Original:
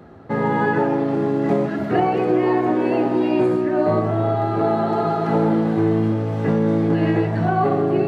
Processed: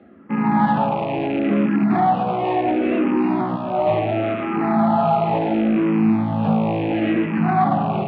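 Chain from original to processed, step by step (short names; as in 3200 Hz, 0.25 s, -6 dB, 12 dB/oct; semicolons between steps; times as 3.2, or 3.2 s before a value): rattling part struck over -25 dBFS, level -26 dBFS; AGC gain up to 9 dB; tube stage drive 12 dB, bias 0.3; speaker cabinet 130–3400 Hz, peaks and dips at 210 Hz +8 dB, 430 Hz -9 dB, 770 Hz +5 dB, 1600 Hz -5 dB; endless phaser -0.71 Hz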